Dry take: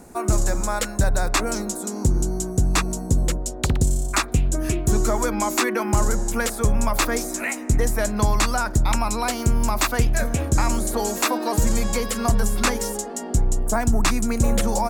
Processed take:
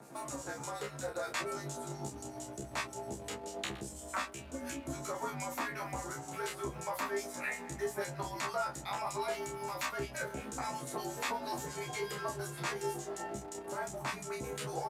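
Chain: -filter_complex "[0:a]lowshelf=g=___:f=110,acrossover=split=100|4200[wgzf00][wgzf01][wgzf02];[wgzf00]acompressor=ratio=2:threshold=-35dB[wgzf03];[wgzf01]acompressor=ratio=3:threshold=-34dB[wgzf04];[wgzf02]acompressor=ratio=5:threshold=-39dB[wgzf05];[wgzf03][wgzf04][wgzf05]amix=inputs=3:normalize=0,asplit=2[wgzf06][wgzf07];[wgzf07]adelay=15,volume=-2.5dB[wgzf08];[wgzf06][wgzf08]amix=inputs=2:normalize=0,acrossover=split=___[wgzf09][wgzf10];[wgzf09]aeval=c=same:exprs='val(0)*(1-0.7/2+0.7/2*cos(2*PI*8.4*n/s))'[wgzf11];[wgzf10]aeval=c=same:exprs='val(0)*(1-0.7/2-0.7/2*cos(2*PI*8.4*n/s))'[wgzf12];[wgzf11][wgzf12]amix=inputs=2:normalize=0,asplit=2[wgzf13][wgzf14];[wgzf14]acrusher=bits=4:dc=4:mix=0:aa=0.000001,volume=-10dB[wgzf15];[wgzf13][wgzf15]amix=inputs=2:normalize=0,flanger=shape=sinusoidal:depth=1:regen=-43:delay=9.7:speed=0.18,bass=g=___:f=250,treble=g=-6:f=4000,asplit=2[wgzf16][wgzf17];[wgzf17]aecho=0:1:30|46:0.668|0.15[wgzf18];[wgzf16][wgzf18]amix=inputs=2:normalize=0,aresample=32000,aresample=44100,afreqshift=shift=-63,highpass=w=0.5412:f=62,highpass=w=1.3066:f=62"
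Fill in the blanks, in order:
-5, 1500, -13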